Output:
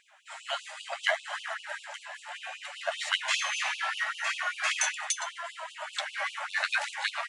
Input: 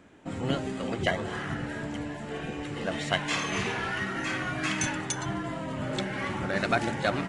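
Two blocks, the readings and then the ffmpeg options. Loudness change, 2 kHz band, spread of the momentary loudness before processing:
−1.0 dB, +1.5 dB, 8 LU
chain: -af "flanger=delay=4.2:depth=9:regen=52:speed=0.69:shape=sinusoidal,afftfilt=real='re*gte(b*sr/1024,540*pow(2600/540,0.5+0.5*sin(2*PI*5.1*pts/sr)))':imag='im*gte(b*sr/1024,540*pow(2600/540,0.5+0.5*sin(2*PI*5.1*pts/sr)))':win_size=1024:overlap=0.75,volume=7dB"

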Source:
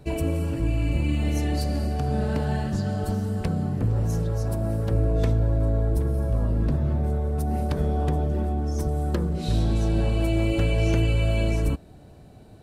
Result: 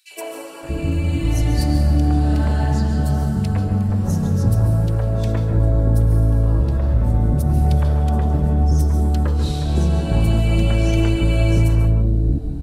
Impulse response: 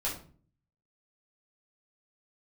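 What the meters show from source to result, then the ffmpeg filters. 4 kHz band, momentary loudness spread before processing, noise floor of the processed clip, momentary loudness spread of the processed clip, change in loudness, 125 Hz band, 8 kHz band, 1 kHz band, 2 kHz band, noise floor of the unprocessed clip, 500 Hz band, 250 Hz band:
+5.0 dB, 4 LU, −30 dBFS, 4 LU, +7.0 dB, +7.5 dB, +6.0 dB, +4.5 dB, +3.5 dB, −47 dBFS, +2.0 dB, +5.5 dB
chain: -filter_complex "[0:a]acrossover=split=450|2400[link_01][link_02][link_03];[link_02]adelay=110[link_04];[link_01]adelay=630[link_05];[link_05][link_04][link_03]amix=inputs=3:normalize=0,asplit=2[link_06][link_07];[1:a]atrim=start_sample=2205,adelay=135[link_08];[link_07][link_08]afir=irnorm=-1:irlink=0,volume=-12dB[link_09];[link_06][link_09]amix=inputs=2:normalize=0,volume=5.5dB"

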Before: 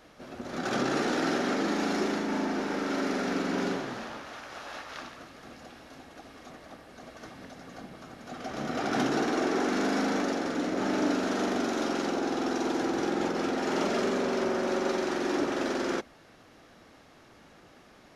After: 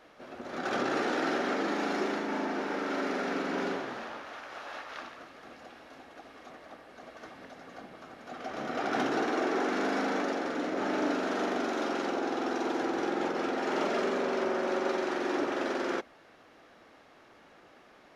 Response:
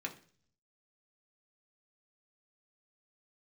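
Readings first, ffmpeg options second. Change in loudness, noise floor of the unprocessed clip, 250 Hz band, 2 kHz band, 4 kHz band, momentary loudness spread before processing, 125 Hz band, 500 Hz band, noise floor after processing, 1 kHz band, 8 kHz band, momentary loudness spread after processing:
−2.0 dB, −56 dBFS, −4.0 dB, −0.5 dB, −3.5 dB, 20 LU, −8.0 dB, −1.0 dB, −58 dBFS, 0.0 dB, −7.0 dB, 19 LU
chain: -af "bass=frequency=250:gain=-10,treble=frequency=4000:gain=-8"

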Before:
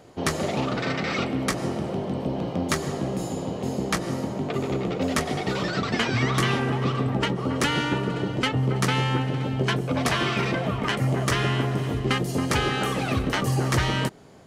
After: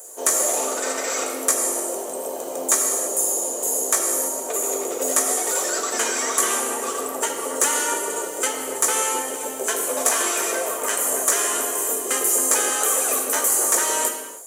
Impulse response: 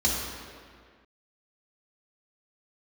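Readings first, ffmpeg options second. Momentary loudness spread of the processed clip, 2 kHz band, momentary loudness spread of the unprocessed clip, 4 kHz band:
7 LU, −0.5 dB, 5 LU, −1.0 dB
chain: -filter_complex "[0:a]highpass=frequency=440:width=0.5412,highpass=frequency=440:width=1.3066,highshelf=frequency=4900:width_type=q:width=1.5:gain=10,acrossover=split=5100[link_01][link_02];[link_02]acompressor=threshold=-36dB:ratio=4:attack=1:release=60[link_03];[link_01][link_03]amix=inputs=2:normalize=0,asplit=2[link_04][link_05];[1:a]atrim=start_sample=2205,afade=type=out:start_time=0.38:duration=0.01,atrim=end_sample=17199[link_06];[link_05][link_06]afir=irnorm=-1:irlink=0,volume=-12.5dB[link_07];[link_04][link_07]amix=inputs=2:normalize=0,aexciter=amount=11.3:drive=4.7:freq=7400"

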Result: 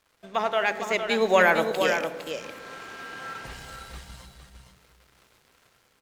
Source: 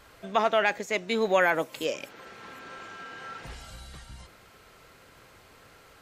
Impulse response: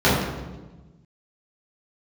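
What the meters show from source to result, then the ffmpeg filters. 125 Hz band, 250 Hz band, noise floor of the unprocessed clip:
+2.5 dB, +2.5 dB, −55 dBFS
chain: -filter_complex "[0:a]lowshelf=frequency=350:gain=-3.5,aeval=exprs='sgn(val(0))*max(abs(val(0))-0.00237,0)':channel_layout=same,dynaudnorm=framelen=330:gausssize=5:maxgain=7dB,aecho=1:1:458:0.447,asplit=2[link_01][link_02];[1:a]atrim=start_sample=2205,adelay=55[link_03];[link_02][link_03]afir=irnorm=-1:irlink=0,volume=-35dB[link_04];[link_01][link_04]amix=inputs=2:normalize=0,volume=-2dB"

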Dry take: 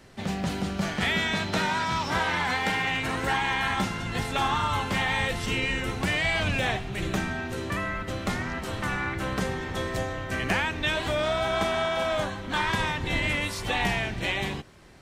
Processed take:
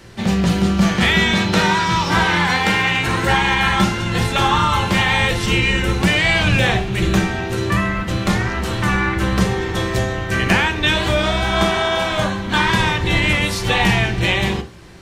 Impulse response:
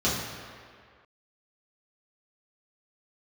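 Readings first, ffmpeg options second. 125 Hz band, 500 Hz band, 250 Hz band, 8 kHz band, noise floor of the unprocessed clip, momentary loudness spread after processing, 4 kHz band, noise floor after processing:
+13.0 dB, +8.5 dB, +12.5 dB, +10.0 dB, −36 dBFS, 6 LU, +11.0 dB, −25 dBFS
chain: -filter_complex "[0:a]asplit=2[link_01][link_02];[1:a]atrim=start_sample=2205,atrim=end_sample=3528[link_03];[link_02][link_03]afir=irnorm=-1:irlink=0,volume=-17dB[link_04];[link_01][link_04]amix=inputs=2:normalize=0,volume=8.5dB"

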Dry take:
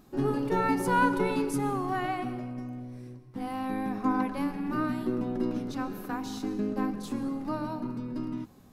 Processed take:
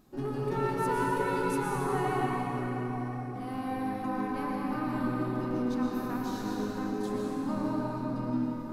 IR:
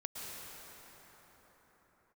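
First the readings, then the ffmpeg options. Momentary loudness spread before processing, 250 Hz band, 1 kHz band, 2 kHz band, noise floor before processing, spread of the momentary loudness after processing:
12 LU, −1.5 dB, −1.0 dB, −2.5 dB, −54 dBFS, 5 LU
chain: -filter_complex "[0:a]aeval=exprs='clip(val(0),-1,0.1)':channel_layout=same,bandreject=frequency=93.16:width_type=h:width=4,bandreject=frequency=186.32:width_type=h:width=4,bandreject=frequency=279.48:width_type=h:width=4,bandreject=frequency=372.64:width_type=h:width=4,bandreject=frequency=465.8:width_type=h:width=4,bandreject=frequency=558.96:width_type=h:width=4,bandreject=frequency=652.12:width_type=h:width=4,bandreject=frequency=745.28:width_type=h:width=4,bandreject=frequency=838.44:width_type=h:width=4,bandreject=frequency=931.6:width_type=h:width=4,bandreject=frequency=1024.76:width_type=h:width=4,bandreject=frequency=1117.92:width_type=h:width=4,bandreject=frequency=1211.08:width_type=h:width=4,bandreject=frequency=1304.24:width_type=h:width=4,bandreject=frequency=1397.4:width_type=h:width=4,bandreject=frequency=1490.56:width_type=h:width=4,bandreject=frequency=1583.72:width_type=h:width=4,bandreject=frequency=1676.88:width_type=h:width=4,bandreject=frequency=1770.04:width_type=h:width=4,bandreject=frequency=1863.2:width_type=h:width=4,bandreject=frequency=1956.36:width_type=h:width=4,bandreject=frequency=2049.52:width_type=h:width=4,bandreject=frequency=2142.68:width_type=h:width=4,bandreject=frequency=2235.84:width_type=h:width=4,bandreject=frequency=2329:width_type=h:width=4,bandreject=frequency=2422.16:width_type=h:width=4,bandreject=frequency=2515.32:width_type=h:width=4,bandreject=frequency=2608.48:width_type=h:width=4,bandreject=frequency=2701.64:width_type=h:width=4,bandreject=frequency=2794.8:width_type=h:width=4,bandreject=frequency=2887.96:width_type=h:width=4,alimiter=limit=-21dB:level=0:latency=1:release=318[link_01];[1:a]atrim=start_sample=2205[link_02];[link_01][link_02]afir=irnorm=-1:irlink=0"

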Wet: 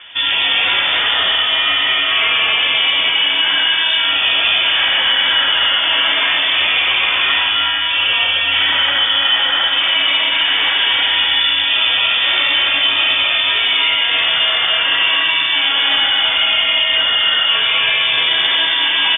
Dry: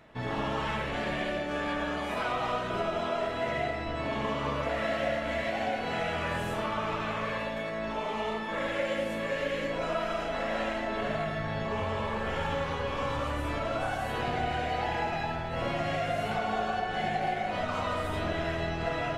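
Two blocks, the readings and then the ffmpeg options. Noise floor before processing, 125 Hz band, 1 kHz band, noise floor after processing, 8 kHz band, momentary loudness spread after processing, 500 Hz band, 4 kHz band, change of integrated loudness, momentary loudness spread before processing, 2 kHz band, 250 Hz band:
−34 dBFS, can't be measured, +8.5 dB, −17 dBFS, below −30 dB, 1 LU, −0.5 dB, +32.0 dB, +19.5 dB, 2 LU, +20.5 dB, −2.5 dB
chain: -filter_complex "[0:a]apsyclip=29.5dB,dynaudnorm=framelen=240:gausssize=31:maxgain=14.5dB,asplit=2[link_01][link_02];[link_02]aecho=0:1:265:0.562[link_03];[link_01][link_03]amix=inputs=2:normalize=0,lowpass=frequency=3100:width_type=q:width=0.5098,lowpass=frequency=3100:width_type=q:width=0.6013,lowpass=frequency=3100:width_type=q:width=0.9,lowpass=frequency=3100:width_type=q:width=2.563,afreqshift=-3600,volume=-10dB"

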